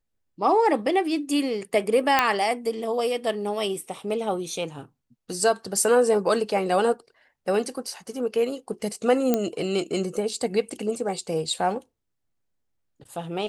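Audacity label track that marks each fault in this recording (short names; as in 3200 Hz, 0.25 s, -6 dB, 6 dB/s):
2.190000	2.190000	pop -4 dBFS
9.340000	9.340000	pop -8 dBFS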